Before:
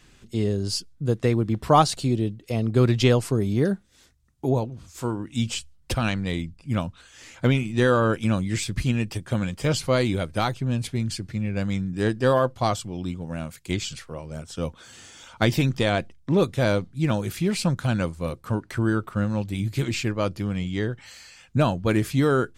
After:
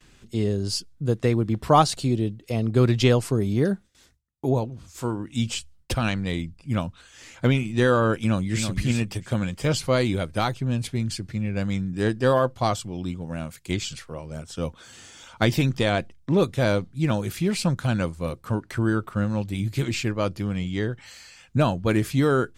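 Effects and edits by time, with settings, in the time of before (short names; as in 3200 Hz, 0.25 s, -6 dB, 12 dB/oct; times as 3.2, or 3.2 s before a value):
8.16–8.69 echo throw 0.33 s, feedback 15%, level -7 dB
whole clip: gate with hold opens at -49 dBFS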